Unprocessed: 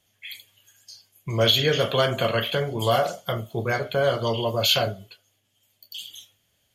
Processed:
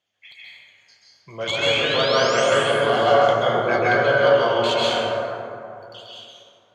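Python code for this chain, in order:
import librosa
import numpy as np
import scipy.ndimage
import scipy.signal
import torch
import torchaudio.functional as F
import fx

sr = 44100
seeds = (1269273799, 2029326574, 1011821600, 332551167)

y = fx.tracing_dist(x, sr, depth_ms=0.088)
y = fx.highpass(y, sr, hz=500.0, slope=6)
y = fx.rider(y, sr, range_db=5, speed_s=0.5)
y = fx.spec_paint(y, sr, seeds[0], shape='rise', start_s=1.47, length_s=1.18, low_hz=2100.0, high_hz=11000.0, level_db=-29.0)
y = fx.air_absorb(y, sr, metres=140.0)
y = fx.rev_plate(y, sr, seeds[1], rt60_s=2.8, hf_ratio=0.35, predelay_ms=120, drr_db=-7.0)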